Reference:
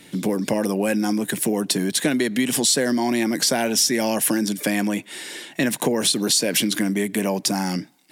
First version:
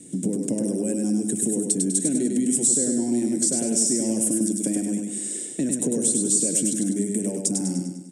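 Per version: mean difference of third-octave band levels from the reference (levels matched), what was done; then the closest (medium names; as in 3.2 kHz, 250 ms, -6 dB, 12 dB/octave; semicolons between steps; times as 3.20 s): 10.0 dB: FFT filter 280 Hz 0 dB, 530 Hz -10 dB, 990 Hz -28 dB, 4.6 kHz -21 dB, 8.3 kHz +6 dB, 13 kHz -24 dB; compression 2:1, threshold -32 dBFS, peak gain reduction 9 dB; bass shelf 170 Hz -11.5 dB; feedback delay 100 ms, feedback 49%, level -4 dB; trim +8 dB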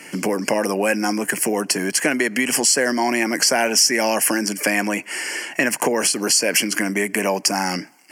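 4.0 dB: high-pass 830 Hz 6 dB/octave; treble shelf 8.8 kHz -10 dB; in parallel at +2.5 dB: compression, threshold -35 dBFS, peak gain reduction 15.5 dB; on the sum: Butterworth band-stop 3.7 kHz, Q 2.1; trim +5.5 dB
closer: second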